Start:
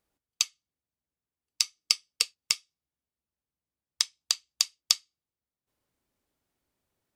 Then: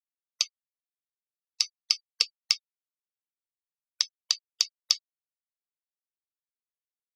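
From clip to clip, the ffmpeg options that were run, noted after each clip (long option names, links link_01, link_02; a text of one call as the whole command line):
ffmpeg -i in.wav -af "afftfilt=real='re*gte(hypot(re,im),0.00708)':imag='im*gte(hypot(re,im),0.00708)':win_size=1024:overlap=0.75,highshelf=frequency=6800:width_type=q:width=3:gain=-7,alimiter=limit=-4dB:level=0:latency=1:release=43" out.wav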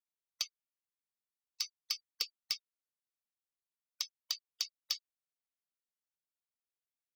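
ffmpeg -i in.wav -af "asoftclip=type=tanh:threshold=-19dB,volume=-5dB" out.wav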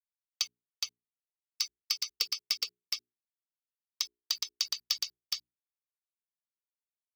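ffmpeg -i in.wav -af "aeval=exprs='val(0)*gte(abs(val(0)),0.00119)':channel_layout=same,bandreject=frequency=60:width_type=h:width=6,bandreject=frequency=120:width_type=h:width=6,bandreject=frequency=180:width_type=h:width=6,bandreject=frequency=240:width_type=h:width=6,bandreject=frequency=300:width_type=h:width=6,bandreject=frequency=360:width_type=h:width=6,bandreject=frequency=420:width_type=h:width=6,aecho=1:1:417:0.708,volume=5dB" out.wav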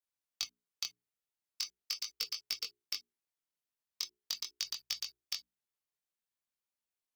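ffmpeg -i in.wav -filter_complex "[0:a]acrossover=split=380[link_01][link_02];[link_02]acompressor=threshold=-35dB:ratio=6[link_03];[link_01][link_03]amix=inputs=2:normalize=0,flanger=delay=18.5:depth=5.4:speed=0.41,volume=4.5dB" out.wav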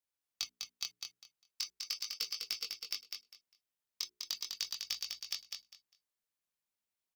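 ffmpeg -i in.wav -af "aecho=1:1:201|402|603:0.562|0.112|0.0225,volume=-1dB" out.wav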